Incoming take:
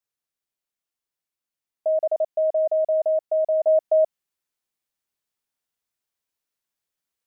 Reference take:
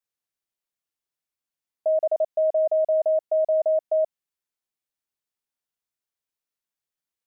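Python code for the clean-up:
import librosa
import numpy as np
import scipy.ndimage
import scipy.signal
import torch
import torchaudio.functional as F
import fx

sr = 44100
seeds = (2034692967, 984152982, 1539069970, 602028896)

y = fx.gain(x, sr, db=fx.steps((0.0, 0.0), (3.67, -4.0)))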